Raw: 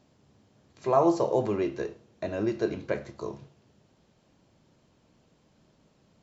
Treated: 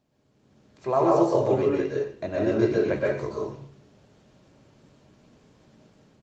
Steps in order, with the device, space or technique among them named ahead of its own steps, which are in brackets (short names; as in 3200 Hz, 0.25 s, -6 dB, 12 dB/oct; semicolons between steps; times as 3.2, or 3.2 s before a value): 1.39–1.88 comb 7.1 ms, depth 46%; speakerphone in a meeting room (reverb RT60 0.55 s, pre-delay 0.117 s, DRR -3.5 dB; speakerphone echo 90 ms, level -24 dB; AGC gain up to 12 dB; gain -8 dB; Opus 32 kbps 48000 Hz)